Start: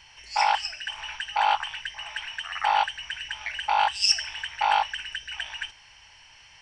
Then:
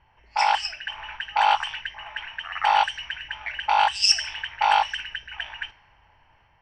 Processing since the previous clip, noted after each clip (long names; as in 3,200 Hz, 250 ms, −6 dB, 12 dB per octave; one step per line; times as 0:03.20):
automatic gain control gain up to 3 dB
low-pass that shuts in the quiet parts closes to 910 Hz, open at −18 dBFS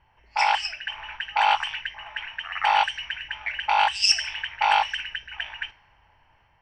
dynamic equaliser 2,300 Hz, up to +5 dB, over −40 dBFS, Q 2
level −1.5 dB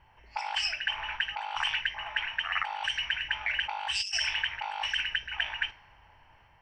compressor whose output falls as the input rises −29 dBFS, ratio −1
level −2.5 dB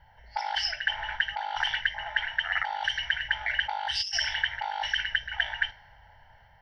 phaser with its sweep stopped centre 1,700 Hz, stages 8
level +5 dB